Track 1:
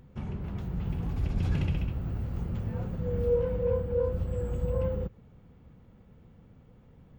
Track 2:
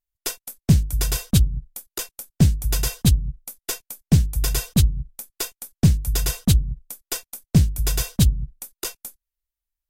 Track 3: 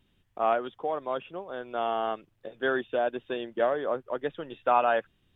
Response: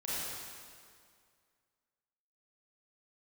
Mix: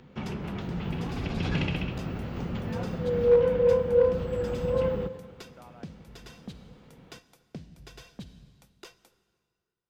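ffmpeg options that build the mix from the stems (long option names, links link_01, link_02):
-filter_complex "[0:a]highshelf=frequency=2700:gain=11,acontrast=27,volume=0.5dB,asplit=2[link_01][link_02];[link_02]volume=-16.5dB[link_03];[1:a]volume=-12.5dB,asplit=2[link_04][link_05];[link_05]volume=-20.5dB[link_06];[2:a]acompressor=threshold=-40dB:ratio=2.5,adelay=900,volume=-16dB[link_07];[link_04][link_07]amix=inputs=2:normalize=0,acompressor=threshold=-36dB:ratio=6,volume=0dB[link_08];[3:a]atrim=start_sample=2205[link_09];[link_03][link_06]amix=inputs=2:normalize=0[link_10];[link_10][link_09]afir=irnorm=-1:irlink=0[link_11];[link_01][link_08][link_11]amix=inputs=3:normalize=0,asoftclip=type=hard:threshold=-12dB,acrossover=split=160 4900:gain=0.2 1 0.0794[link_12][link_13][link_14];[link_12][link_13][link_14]amix=inputs=3:normalize=0"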